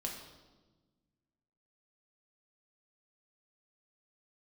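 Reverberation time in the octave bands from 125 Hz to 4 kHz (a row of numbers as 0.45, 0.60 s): 2.1, 2.0, 1.4, 1.1, 0.90, 1.0 s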